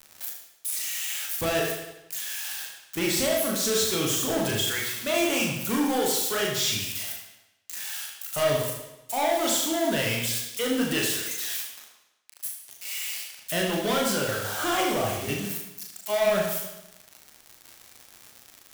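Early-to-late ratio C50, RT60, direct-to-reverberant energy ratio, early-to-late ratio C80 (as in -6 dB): 3.0 dB, 0.95 s, -2.0 dB, 5.5 dB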